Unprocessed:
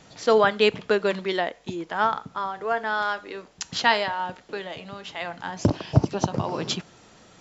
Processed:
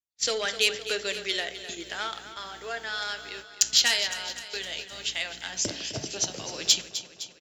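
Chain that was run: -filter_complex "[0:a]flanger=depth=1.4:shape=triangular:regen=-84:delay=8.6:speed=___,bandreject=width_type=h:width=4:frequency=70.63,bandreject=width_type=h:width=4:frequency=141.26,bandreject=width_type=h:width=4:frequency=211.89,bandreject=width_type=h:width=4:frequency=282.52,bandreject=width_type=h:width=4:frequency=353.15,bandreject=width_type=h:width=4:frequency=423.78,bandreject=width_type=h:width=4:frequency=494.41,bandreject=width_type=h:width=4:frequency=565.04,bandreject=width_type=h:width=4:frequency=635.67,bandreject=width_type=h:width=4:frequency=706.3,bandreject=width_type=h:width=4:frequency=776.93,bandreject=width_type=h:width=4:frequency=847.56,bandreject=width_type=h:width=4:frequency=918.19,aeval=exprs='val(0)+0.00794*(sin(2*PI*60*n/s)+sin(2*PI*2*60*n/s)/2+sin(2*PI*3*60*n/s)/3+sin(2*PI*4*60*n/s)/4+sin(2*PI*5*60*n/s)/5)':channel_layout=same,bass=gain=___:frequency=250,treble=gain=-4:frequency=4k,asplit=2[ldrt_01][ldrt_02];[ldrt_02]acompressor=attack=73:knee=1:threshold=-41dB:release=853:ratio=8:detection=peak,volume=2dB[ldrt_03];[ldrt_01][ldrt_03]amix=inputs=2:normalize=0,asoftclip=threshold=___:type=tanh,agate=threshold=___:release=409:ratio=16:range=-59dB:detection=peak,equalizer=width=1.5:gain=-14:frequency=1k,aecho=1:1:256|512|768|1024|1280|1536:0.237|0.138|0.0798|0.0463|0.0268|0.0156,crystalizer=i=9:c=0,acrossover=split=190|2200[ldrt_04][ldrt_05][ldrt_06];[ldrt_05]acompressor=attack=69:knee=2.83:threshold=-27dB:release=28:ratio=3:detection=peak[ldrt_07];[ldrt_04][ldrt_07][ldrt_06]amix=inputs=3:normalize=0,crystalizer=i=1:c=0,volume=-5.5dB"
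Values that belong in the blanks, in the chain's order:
0.8, -13, -13dB, -37dB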